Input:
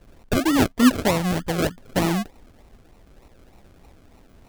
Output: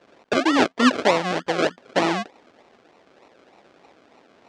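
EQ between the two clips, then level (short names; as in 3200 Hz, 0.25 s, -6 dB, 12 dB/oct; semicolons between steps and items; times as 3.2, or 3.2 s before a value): BPF 380–6800 Hz; air absorption 73 m; +5.0 dB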